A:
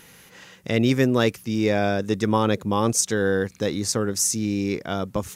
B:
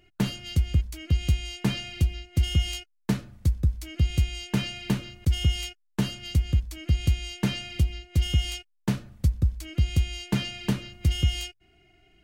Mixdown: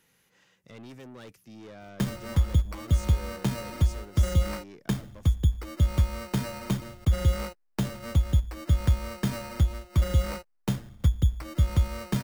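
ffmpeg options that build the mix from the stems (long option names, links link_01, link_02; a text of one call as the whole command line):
ffmpeg -i stem1.wav -i stem2.wav -filter_complex "[0:a]asoftclip=type=tanh:threshold=-24.5dB,volume=-18dB[link_01];[1:a]acrusher=samples=13:mix=1:aa=0.000001,adelay=1800,volume=0.5dB[link_02];[link_01][link_02]amix=inputs=2:normalize=0,acrossover=split=160|3000[link_03][link_04][link_05];[link_04]acompressor=threshold=-29dB:ratio=6[link_06];[link_03][link_06][link_05]amix=inputs=3:normalize=0" out.wav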